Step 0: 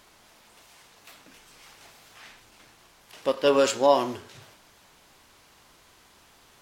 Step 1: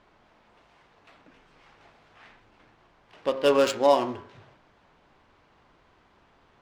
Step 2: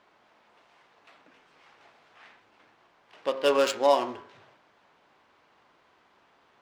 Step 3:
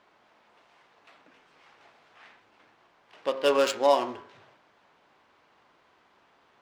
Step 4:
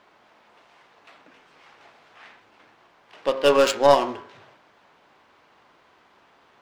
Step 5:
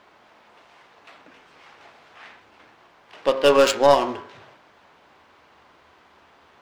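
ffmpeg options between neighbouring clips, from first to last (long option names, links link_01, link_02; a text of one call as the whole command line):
ffmpeg -i in.wav -af "bandreject=frequency=66.53:width_type=h:width=4,bandreject=frequency=133.06:width_type=h:width=4,bandreject=frequency=199.59:width_type=h:width=4,bandreject=frequency=266.12:width_type=h:width=4,bandreject=frequency=332.65:width_type=h:width=4,bandreject=frequency=399.18:width_type=h:width=4,bandreject=frequency=465.71:width_type=h:width=4,bandreject=frequency=532.24:width_type=h:width=4,bandreject=frequency=598.77:width_type=h:width=4,bandreject=frequency=665.3:width_type=h:width=4,bandreject=frequency=731.83:width_type=h:width=4,bandreject=frequency=798.36:width_type=h:width=4,bandreject=frequency=864.89:width_type=h:width=4,bandreject=frequency=931.42:width_type=h:width=4,bandreject=frequency=997.95:width_type=h:width=4,bandreject=frequency=1064.48:width_type=h:width=4,bandreject=frequency=1131.01:width_type=h:width=4,bandreject=frequency=1197.54:width_type=h:width=4,bandreject=frequency=1264.07:width_type=h:width=4,bandreject=frequency=1330.6:width_type=h:width=4,bandreject=frequency=1397.13:width_type=h:width=4,bandreject=frequency=1463.66:width_type=h:width=4,bandreject=frequency=1530.19:width_type=h:width=4,bandreject=frequency=1596.72:width_type=h:width=4,bandreject=frequency=1663.25:width_type=h:width=4,bandreject=frequency=1729.78:width_type=h:width=4,bandreject=frequency=1796.31:width_type=h:width=4,bandreject=frequency=1862.84:width_type=h:width=4,bandreject=frequency=1929.37:width_type=h:width=4,bandreject=frequency=1995.9:width_type=h:width=4,bandreject=frequency=2062.43:width_type=h:width=4,bandreject=frequency=2128.96:width_type=h:width=4,bandreject=frequency=2195.49:width_type=h:width=4,bandreject=frequency=2262.02:width_type=h:width=4,bandreject=frequency=2328.55:width_type=h:width=4,bandreject=frequency=2395.08:width_type=h:width=4,bandreject=frequency=2461.61:width_type=h:width=4,bandreject=frequency=2528.14:width_type=h:width=4,adynamicsmooth=sensitivity=4:basefreq=2100" out.wav
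ffmpeg -i in.wav -af "highpass=frequency=250:poles=1,lowshelf=frequency=330:gain=-4.5" out.wav
ffmpeg -i in.wav -af anull out.wav
ffmpeg -i in.wav -af "aeval=exprs='0.355*(cos(1*acos(clip(val(0)/0.355,-1,1)))-cos(1*PI/2))+0.0631*(cos(2*acos(clip(val(0)/0.355,-1,1)))-cos(2*PI/2))':channel_layout=same,volume=5.5dB" out.wav
ffmpeg -i in.wav -filter_complex "[0:a]equalizer=frequency=77:width=7.8:gain=13,asplit=2[link_01][link_02];[link_02]alimiter=limit=-10dB:level=0:latency=1:release=231,volume=-1dB[link_03];[link_01][link_03]amix=inputs=2:normalize=0,volume=-2.5dB" out.wav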